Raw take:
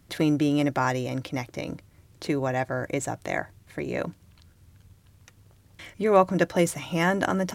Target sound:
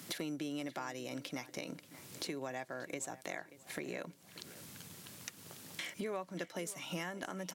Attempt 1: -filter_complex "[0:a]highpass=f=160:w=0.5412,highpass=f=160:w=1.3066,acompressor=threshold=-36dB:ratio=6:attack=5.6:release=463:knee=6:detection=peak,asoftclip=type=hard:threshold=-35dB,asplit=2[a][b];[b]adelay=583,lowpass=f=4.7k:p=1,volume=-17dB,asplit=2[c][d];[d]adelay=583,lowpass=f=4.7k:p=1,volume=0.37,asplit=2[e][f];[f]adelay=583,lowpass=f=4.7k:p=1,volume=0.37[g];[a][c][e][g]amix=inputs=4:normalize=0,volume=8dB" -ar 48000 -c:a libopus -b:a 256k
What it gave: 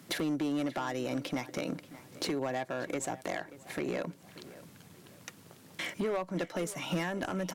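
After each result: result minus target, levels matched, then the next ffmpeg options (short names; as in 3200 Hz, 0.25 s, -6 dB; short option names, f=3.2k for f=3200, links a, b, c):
compressor: peak gain reduction -10 dB; 4000 Hz band -3.5 dB
-filter_complex "[0:a]highpass=f=160:w=0.5412,highpass=f=160:w=1.3066,acompressor=threshold=-47dB:ratio=6:attack=5.6:release=463:knee=6:detection=peak,asoftclip=type=hard:threshold=-35dB,asplit=2[a][b];[b]adelay=583,lowpass=f=4.7k:p=1,volume=-17dB,asplit=2[c][d];[d]adelay=583,lowpass=f=4.7k:p=1,volume=0.37,asplit=2[e][f];[f]adelay=583,lowpass=f=4.7k:p=1,volume=0.37[g];[a][c][e][g]amix=inputs=4:normalize=0,volume=8dB" -ar 48000 -c:a libopus -b:a 256k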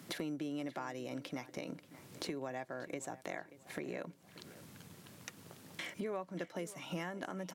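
4000 Hz band -3.0 dB
-filter_complex "[0:a]highpass=f=160:w=0.5412,highpass=f=160:w=1.3066,highshelf=f=2.3k:g=9,acompressor=threshold=-47dB:ratio=6:attack=5.6:release=463:knee=6:detection=peak,asoftclip=type=hard:threshold=-35dB,asplit=2[a][b];[b]adelay=583,lowpass=f=4.7k:p=1,volume=-17dB,asplit=2[c][d];[d]adelay=583,lowpass=f=4.7k:p=1,volume=0.37,asplit=2[e][f];[f]adelay=583,lowpass=f=4.7k:p=1,volume=0.37[g];[a][c][e][g]amix=inputs=4:normalize=0,volume=8dB" -ar 48000 -c:a libopus -b:a 256k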